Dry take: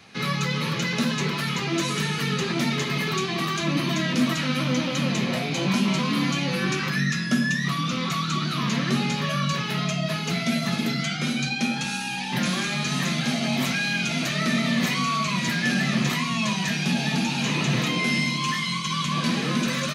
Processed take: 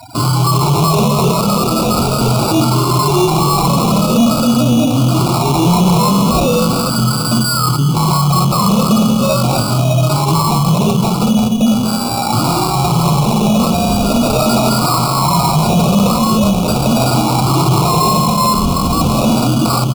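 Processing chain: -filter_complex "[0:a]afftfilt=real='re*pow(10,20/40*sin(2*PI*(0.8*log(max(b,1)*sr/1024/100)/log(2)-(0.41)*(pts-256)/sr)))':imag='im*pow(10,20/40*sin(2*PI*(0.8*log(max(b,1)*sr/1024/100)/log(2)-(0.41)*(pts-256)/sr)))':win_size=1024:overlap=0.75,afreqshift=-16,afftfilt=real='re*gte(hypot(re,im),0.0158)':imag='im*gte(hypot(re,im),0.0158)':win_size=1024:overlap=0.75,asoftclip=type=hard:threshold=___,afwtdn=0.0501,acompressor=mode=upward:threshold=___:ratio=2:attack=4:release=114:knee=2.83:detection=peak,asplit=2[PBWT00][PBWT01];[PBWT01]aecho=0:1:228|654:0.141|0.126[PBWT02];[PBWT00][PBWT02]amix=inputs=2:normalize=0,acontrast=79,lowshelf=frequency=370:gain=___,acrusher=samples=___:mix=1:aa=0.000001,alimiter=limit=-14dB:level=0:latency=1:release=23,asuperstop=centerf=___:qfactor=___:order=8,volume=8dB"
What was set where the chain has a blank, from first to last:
-15.5dB, -26dB, -2.5, 14, 1800, 1.6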